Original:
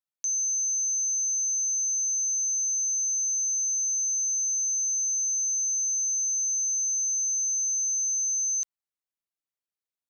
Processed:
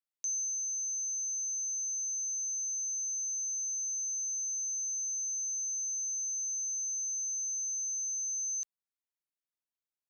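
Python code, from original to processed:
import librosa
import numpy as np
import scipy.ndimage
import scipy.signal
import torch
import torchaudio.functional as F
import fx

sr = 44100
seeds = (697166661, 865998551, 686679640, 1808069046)

y = fx.rider(x, sr, range_db=10, speed_s=0.5)
y = y * 10.0 ** (-8.0 / 20.0)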